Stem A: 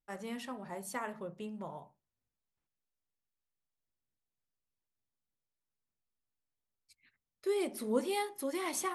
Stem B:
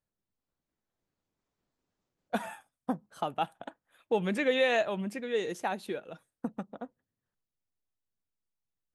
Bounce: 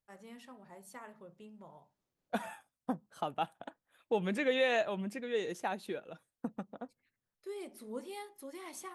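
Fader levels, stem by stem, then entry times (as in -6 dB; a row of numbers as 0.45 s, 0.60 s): -10.5 dB, -3.5 dB; 0.00 s, 0.00 s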